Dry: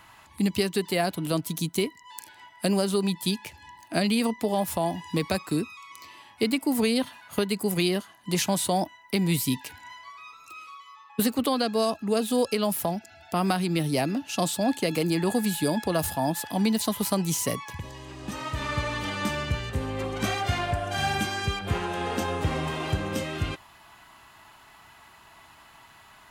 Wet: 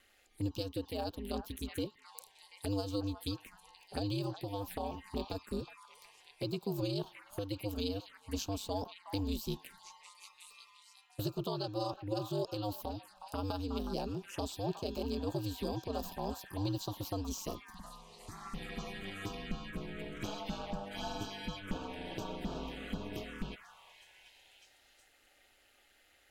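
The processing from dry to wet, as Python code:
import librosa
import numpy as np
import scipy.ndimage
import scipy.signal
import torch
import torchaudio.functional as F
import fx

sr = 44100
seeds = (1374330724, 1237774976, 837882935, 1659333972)

y = x * np.sin(2.0 * np.pi * 100.0 * np.arange(len(x)) / sr)
y = fx.echo_stepped(y, sr, ms=367, hz=1200.0, octaves=0.7, feedback_pct=70, wet_db=-4.0)
y = fx.env_phaser(y, sr, low_hz=150.0, high_hz=2000.0, full_db=-26.5)
y = y * librosa.db_to_amplitude(-8.0)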